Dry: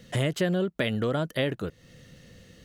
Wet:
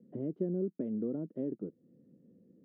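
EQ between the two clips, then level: Butterworth band-pass 280 Hz, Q 1.4; -3.0 dB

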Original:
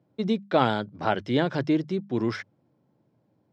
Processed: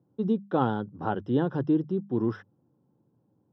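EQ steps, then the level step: running mean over 20 samples; bell 630 Hz -12.5 dB 0.21 oct; 0.0 dB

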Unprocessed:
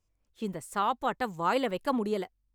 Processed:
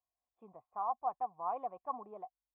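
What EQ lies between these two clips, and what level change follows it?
vocal tract filter a; HPF 46 Hz; +1.5 dB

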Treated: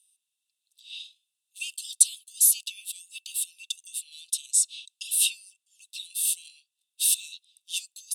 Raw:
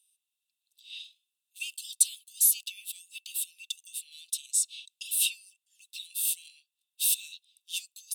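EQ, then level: high shelf 2400 Hz +7 dB; band shelf 5000 Hz +11.5 dB 2.6 oct; -13.5 dB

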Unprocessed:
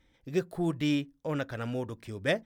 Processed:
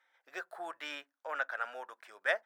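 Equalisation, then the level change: ladder high-pass 600 Hz, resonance 45%; bell 1500 Hz +14.5 dB 0.88 oct; 0.0 dB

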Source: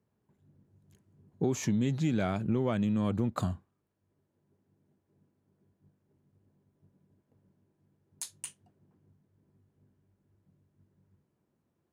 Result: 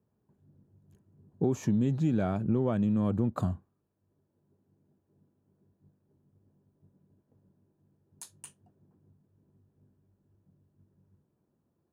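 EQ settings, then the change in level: bell 3600 Hz -9 dB 2.6 oct; high shelf 6400 Hz -6.5 dB; notch 2100 Hz, Q 8.5; +2.0 dB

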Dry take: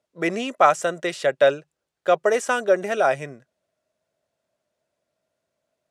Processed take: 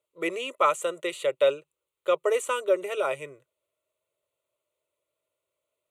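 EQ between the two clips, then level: tone controls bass -5 dB, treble +6 dB; fixed phaser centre 1100 Hz, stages 8; -2.5 dB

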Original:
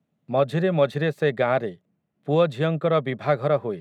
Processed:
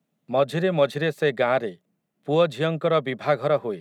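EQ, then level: HPF 160 Hz 12 dB/oct; high shelf 3600 Hz +7 dB; 0.0 dB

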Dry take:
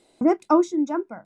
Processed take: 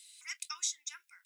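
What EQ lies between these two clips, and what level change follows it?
inverse Chebyshev high-pass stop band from 650 Hz, stop band 60 dB; tilt +4 dB/oct; 0.0 dB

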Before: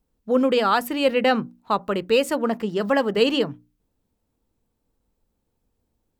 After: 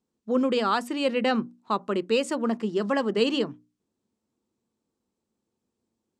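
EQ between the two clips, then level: speaker cabinet 120–8400 Hz, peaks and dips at 220 Hz +7 dB, 360 Hz +8 dB, 1100 Hz +4 dB; high shelf 4900 Hz +8.5 dB; -7.0 dB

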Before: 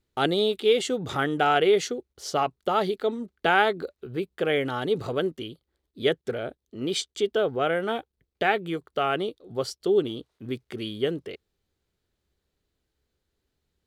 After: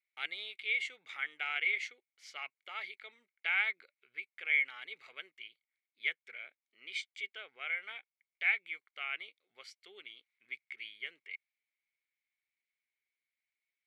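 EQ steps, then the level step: band-pass 2200 Hz, Q 16; tilt +3 dB/oct; +5.5 dB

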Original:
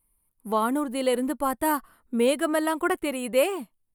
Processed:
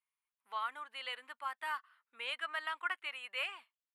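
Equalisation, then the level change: Butterworth band-pass 1900 Hz, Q 0.9; tilt +3 dB/oct; -8.0 dB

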